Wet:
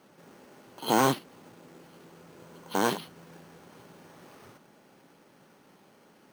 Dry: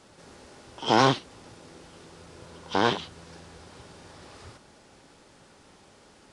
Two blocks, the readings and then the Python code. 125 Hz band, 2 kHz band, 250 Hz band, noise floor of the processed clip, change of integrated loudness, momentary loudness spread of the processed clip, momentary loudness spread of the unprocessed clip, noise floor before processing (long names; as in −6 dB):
−5.0 dB, −4.0 dB, −1.5 dB, −60 dBFS, −3.0 dB, 13 LU, 14 LU, −56 dBFS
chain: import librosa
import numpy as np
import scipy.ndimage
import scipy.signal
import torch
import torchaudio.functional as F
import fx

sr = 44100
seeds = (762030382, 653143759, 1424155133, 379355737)

y = fx.low_shelf_res(x, sr, hz=110.0, db=-13.5, q=1.5)
y = np.repeat(scipy.signal.resample_poly(y, 1, 6), 6)[:len(y)]
y = y * 10.0 ** (-3.5 / 20.0)